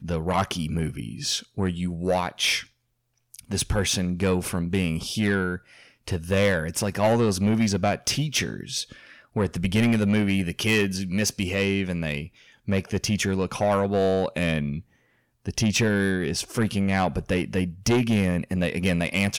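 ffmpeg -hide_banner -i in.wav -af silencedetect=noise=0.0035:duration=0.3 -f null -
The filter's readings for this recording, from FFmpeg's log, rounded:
silence_start: 2.68
silence_end: 3.34 | silence_duration: 0.67
silence_start: 14.82
silence_end: 15.46 | silence_duration: 0.64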